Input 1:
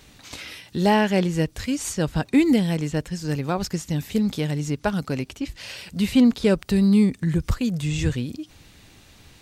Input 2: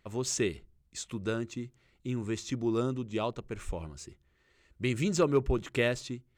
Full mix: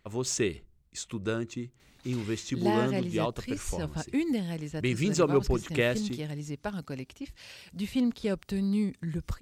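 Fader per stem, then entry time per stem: -11.0 dB, +1.5 dB; 1.80 s, 0.00 s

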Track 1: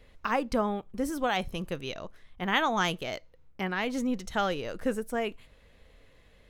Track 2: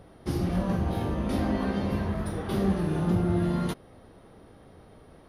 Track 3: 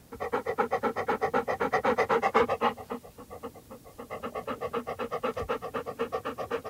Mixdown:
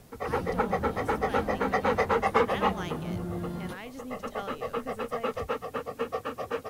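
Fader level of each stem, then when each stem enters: -11.5 dB, -9.0 dB, 0.0 dB; 0.00 s, 0.00 s, 0.00 s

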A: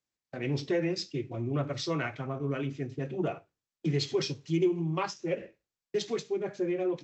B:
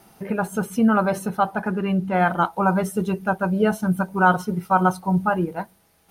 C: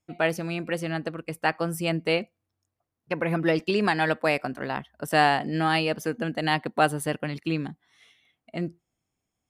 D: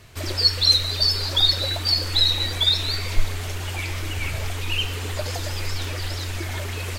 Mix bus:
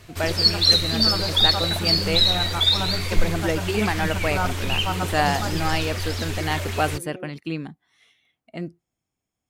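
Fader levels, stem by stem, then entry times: -11.0 dB, -10.0 dB, -1.5 dB, +0.5 dB; 0.35 s, 0.15 s, 0.00 s, 0.00 s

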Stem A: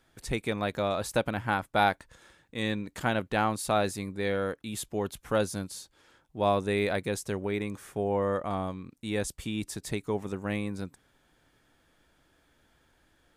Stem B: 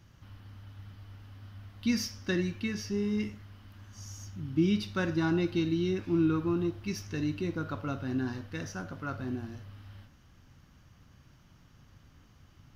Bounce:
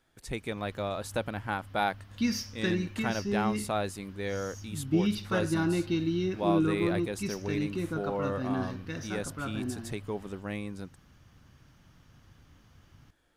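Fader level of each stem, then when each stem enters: -4.5 dB, 0.0 dB; 0.00 s, 0.35 s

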